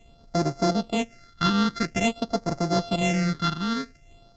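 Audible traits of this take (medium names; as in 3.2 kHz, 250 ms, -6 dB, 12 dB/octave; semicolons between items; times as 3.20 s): a buzz of ramps at a fixed pitch in blocks of 64 samples; phasing stages 6, 0.49 Hz, lowest notch 600–2900 Hz; µ-law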